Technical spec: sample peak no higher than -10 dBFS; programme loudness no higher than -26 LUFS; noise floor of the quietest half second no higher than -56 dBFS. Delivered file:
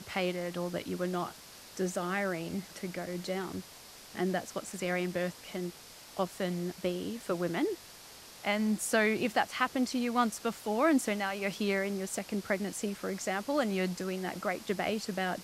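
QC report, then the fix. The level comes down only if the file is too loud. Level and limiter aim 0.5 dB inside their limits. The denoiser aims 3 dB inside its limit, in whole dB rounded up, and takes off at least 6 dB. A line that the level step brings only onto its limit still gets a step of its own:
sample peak -13.0 dBFS: pass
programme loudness -33.0 LUFS: pass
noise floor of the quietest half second -51 dBFS: fail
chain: noise reduction 8 dB, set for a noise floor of -51 dBFS

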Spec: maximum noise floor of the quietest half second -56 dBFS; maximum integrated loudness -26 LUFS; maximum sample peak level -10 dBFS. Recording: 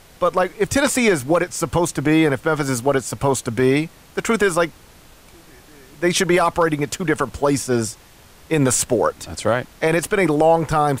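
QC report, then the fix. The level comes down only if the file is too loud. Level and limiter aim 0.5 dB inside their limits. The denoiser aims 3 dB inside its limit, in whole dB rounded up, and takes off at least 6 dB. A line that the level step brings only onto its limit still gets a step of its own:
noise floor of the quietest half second -47 dBFS: fail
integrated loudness -19.0 LUFS: fail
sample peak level -6.0 dBFS: fail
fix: noise reduction 6 dB, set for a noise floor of -47 dBFS; trim -7.5 dB

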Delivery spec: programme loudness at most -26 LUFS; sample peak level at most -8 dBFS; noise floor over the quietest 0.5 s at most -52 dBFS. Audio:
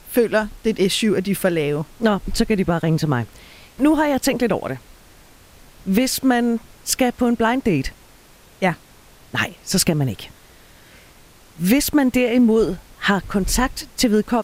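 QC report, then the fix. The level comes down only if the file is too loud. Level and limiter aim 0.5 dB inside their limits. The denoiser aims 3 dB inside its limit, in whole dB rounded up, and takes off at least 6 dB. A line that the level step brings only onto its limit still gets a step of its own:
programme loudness -19.5 LUFS: fail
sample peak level -2.5 dBFS: fail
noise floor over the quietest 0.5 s -48 dBFS: fail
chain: trim -7 dB

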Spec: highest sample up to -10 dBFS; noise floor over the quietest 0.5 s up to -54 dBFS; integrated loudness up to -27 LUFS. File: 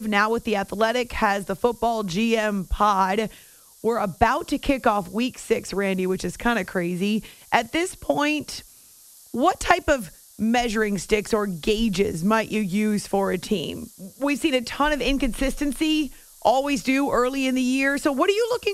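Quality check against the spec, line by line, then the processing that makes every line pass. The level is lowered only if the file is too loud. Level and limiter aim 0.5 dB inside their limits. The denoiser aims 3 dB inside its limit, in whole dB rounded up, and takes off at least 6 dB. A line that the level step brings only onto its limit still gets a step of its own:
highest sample -2.5 dBFS: fail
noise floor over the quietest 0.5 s -50 dBFS: fail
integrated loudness -23.0 LUFS: fail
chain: trim -4.5 dB; peak limiter -10.5 dBFS

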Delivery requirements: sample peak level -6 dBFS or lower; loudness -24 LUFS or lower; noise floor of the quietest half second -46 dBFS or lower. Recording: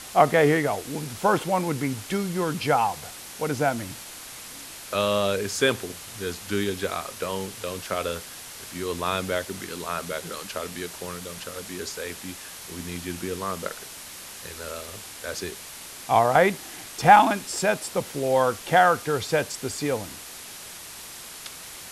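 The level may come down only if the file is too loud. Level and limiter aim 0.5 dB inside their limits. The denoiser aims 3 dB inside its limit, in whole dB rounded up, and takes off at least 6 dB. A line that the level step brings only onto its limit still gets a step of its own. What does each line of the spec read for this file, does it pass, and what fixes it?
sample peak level -3.0 dBFS: fail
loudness -25.5 LUFS: pass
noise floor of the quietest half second -41 dBFS: fail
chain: noise reduction 8 dB, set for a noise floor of -41 dBFS; peak limiter -6.5 dBFS

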